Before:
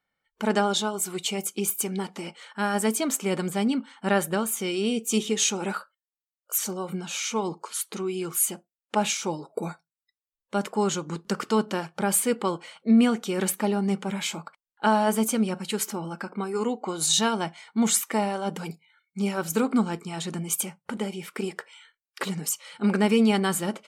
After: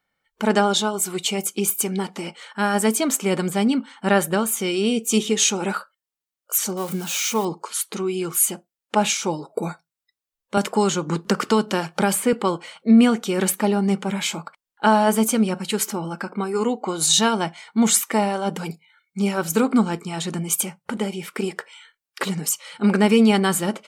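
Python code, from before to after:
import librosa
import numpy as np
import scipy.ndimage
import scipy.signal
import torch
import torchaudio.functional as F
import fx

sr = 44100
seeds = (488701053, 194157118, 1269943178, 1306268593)

y = fx.crossing_spikes(x, sr, level_db=-30.5, at=(6.77, 7.45))
y = fx.band_squash(y, sr, depth_pct=70, at=(10.57, 12.33))
y = y * 10.0 ** (5.0 / 20.0)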